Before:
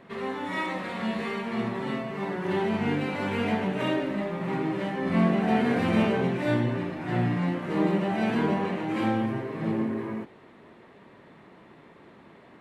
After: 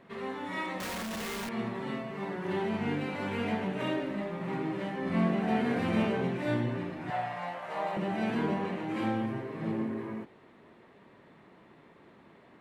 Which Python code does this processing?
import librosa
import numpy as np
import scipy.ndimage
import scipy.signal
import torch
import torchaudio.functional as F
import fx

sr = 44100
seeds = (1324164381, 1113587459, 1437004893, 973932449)

y = fx.clip_1bit(x, sr, at=(0.8, 1.49))
y = fx.low_shelf_res(y, sr, hz=460.0, db=-13.5, q=3.0, at=(7.1, 7.97))
y = F.gain(torch.from_numpy(y), -5.0).numpy()